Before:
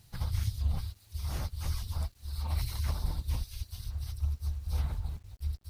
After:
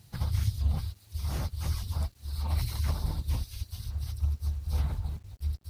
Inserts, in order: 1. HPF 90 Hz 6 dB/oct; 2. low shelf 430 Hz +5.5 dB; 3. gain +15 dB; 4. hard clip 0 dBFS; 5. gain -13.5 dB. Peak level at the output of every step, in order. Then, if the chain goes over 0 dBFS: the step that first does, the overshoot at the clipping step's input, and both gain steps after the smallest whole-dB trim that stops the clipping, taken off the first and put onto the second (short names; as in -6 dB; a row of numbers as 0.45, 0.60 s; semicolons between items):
-23.0, -18.0, -3.0, -3.0, -16.5 dBFS; no overload